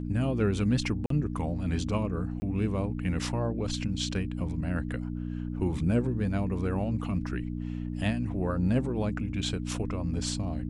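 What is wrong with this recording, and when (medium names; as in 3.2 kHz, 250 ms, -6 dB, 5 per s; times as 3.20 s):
hum 60 Hz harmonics 5 -34 dBFS
1.06–1.10 s: dropout 43 ms
2.40–2.42 s: dropout 20 ms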